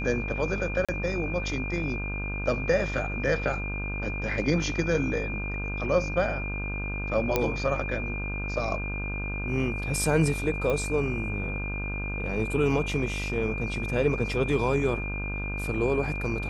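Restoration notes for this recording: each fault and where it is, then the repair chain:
buzz 50 Hz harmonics 32 -33 dBFS
whine 2.4 kHz -34 dBFS
0.85–0.89 s: dropout 36 ms
7.36 s: pop -9 dBFS
10.70 s: pop -17 dBFS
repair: de-click; band-stop 2.4 kHz, Q 30; de-hum 50 Hz, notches 32; interpolate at 0.85 s, 36 ms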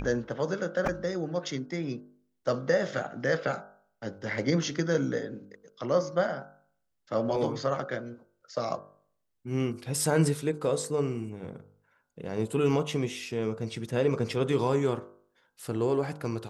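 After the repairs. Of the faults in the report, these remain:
nothing left

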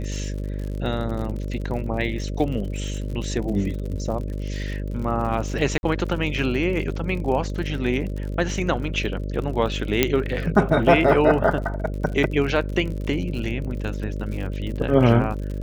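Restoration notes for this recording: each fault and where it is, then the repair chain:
buzz 50 Hz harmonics 12 -28 dBFS
crackle 59 per s -31 dBFS
5.78–5.83 s: dropout 51 ms
10.03 s: pop -2 dBFS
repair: de-click; de-hum 50 Hz, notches 12; interpolate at 5.78 s, 51 ms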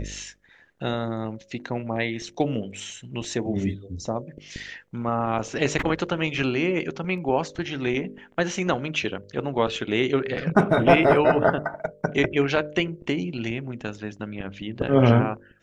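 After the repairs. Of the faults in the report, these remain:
nothing left

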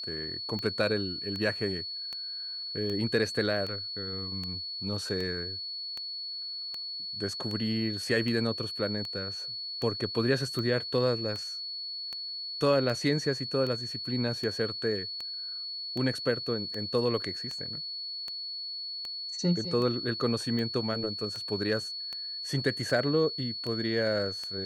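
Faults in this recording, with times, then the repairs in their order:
tick 78 rpm -23 dBFS
whine 4.4 kHz -35 dBFS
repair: de-click; band-stop 4.4 kHz, Q 30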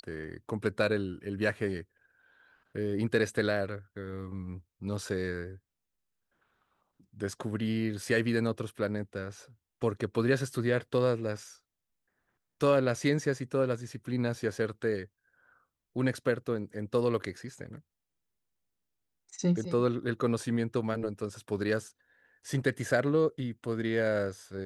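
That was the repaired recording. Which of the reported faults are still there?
nothing left

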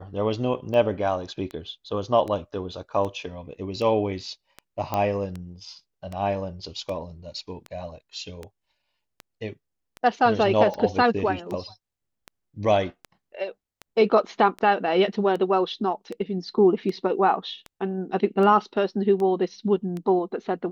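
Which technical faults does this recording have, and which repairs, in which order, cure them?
tick 78 rpm -21 dBFS
4.94 s: pop -12 dBFS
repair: de-click

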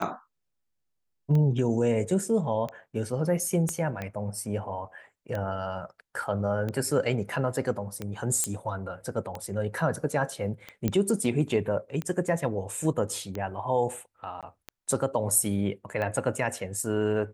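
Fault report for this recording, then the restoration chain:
tick 45 rpm -20 dBFS
3.69 s: pop -17 dBFS
8.44 s: pop -12 dBFS
10.88 s: pop -13 dBFS
14.41–14.43 s: dropout 17 ms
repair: de-click; interpolate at 14.41 s, 17 ms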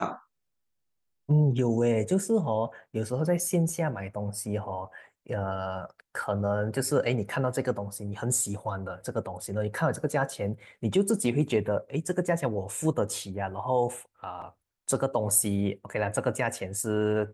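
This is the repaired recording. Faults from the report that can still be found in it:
3.69 s: pop

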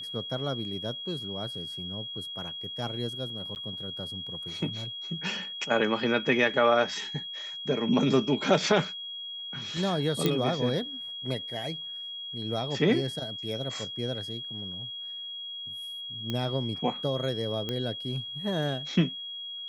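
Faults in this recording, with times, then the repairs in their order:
whine 3.3 kHz -36 dBFS
3.55–3.56 s: dropout 9.6 ms
10.26 s: pop -11 dBFS
16.30 s: pop -18 dBFS
17.69 s: pop -18 dBFS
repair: de-click; band-stop 3.3 kHz, Q 30; interpolate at 3.55 s, 9.6 ms

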